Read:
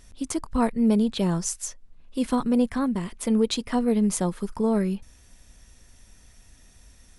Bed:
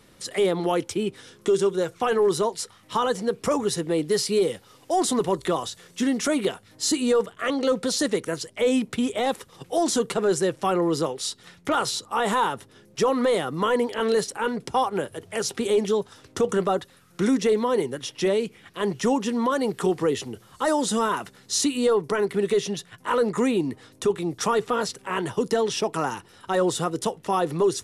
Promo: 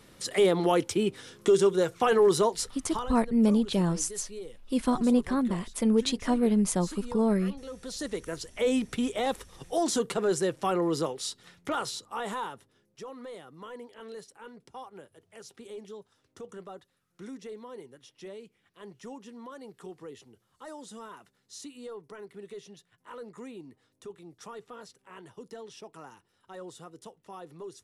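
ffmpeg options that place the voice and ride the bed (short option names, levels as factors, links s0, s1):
-filter_complex "[0:a]adelay=2550,volume=0.794[s0];[1:a]volume=5.31,afade=t=out:st=2.61:d=0.51:silence=0.112202,afade=t=in:st=7.71:d=0.94:silence=0.177828,afade=t=out:st=11.05:d=1.98:silence=0.149624[s1];[s0][s1]amix=inputs=2:normalize=0"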